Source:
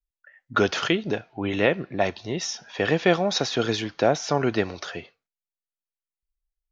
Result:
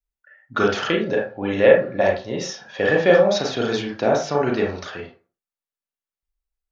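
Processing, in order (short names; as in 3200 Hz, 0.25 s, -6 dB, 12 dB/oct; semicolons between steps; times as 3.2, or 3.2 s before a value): 0.88–3.27 small resonant body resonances 540/1700 Hz, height 16 dB -> 13 dB, ringing for 85 ms; reverb RT60 0.35 s, pre-delay 28 ms, DRR -1.5 dB; gain -2 dB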